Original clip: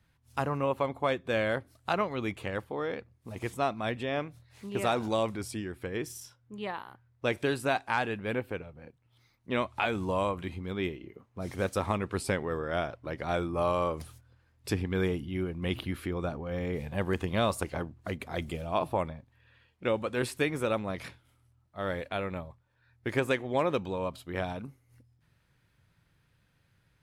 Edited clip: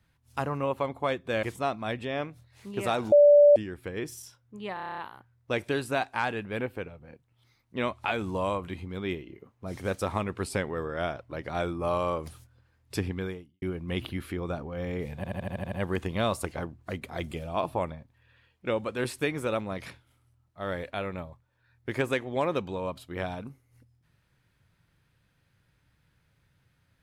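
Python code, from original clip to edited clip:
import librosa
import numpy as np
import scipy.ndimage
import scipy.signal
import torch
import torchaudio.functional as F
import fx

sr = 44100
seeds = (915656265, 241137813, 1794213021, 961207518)

y = fx.edit(x, sr, fx.cut(start_s=1.43, length_s=1.98),
    fx.bleep(start_s=5.1, length_s=0.44, hz=583.0, db=-12.5),
    fx.stutter(start_s=6.72, slice_s=0.03, count=9),
    fx.fade_out_span(start_s=14.87, length_s=0.49, curve='qua'),
    fx.stutter(start_s=16.9, slice_s=0.08, count=8), tone=tone)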